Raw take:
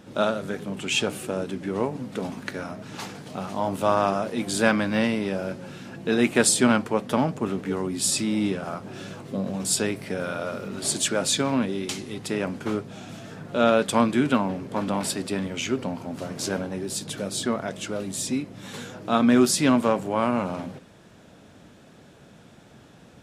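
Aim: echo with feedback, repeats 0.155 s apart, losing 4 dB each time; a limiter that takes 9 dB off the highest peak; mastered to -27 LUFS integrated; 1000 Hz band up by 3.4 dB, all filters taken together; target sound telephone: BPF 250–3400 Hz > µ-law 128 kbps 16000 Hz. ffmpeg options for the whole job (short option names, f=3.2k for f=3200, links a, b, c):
-af "equalizer=f=1k:t=o:g=4.5,alimiter=limit=-12dB:level=0:latency=1,highpass=250,lowpass=3.4k,aecho=1:1:155|310|465|620|775|930|1085|1240|1395:0.631|0.398|0.25|0.158|0.0994|0.0626|0.0394|0.0249|0.0157,volume=-0.5dB" -ar 16000 -c:a pcm_mulaw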